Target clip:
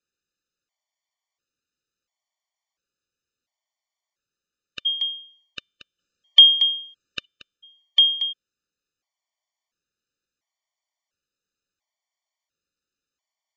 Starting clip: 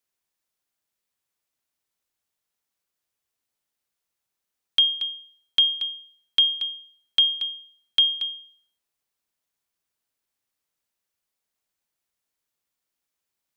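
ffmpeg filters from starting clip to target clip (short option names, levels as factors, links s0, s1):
-filter_complex "[0:a]asettb=1/sr,asplit=3[s0][s1][s2];[s0]atrim=end=5.994[s3];[s1]atrim=start=5.99:end=7.25,asetpts=PTS-STARTPTS,afade=t=in:d=0.004:c=qsin,afade=t=out:st=1.256:d=0.004:c=qsin,acontrast=56[s4];[s2]atrim=start=7.246[s5];[s3][s4]acrossfade=d=0.004:c1=hsin:c2=qsin[s6];[s6][s5]acrossfade=d=0.004:c1=qsin:c2=hsin,aresample=16000,aresample=44100,afftfilt=real='re*gt(sin(2*PI*0.72*pts/sr)*(1-2*mod(floor(b*sr/1024/600),2)),0)':imag='im*gt(sin(2*PI*0.72*pts/sr)*(1-2*mod(floor(b*sr/1024/600),2)),0)':win_size=1024:overlap=0.75,volume=1.41"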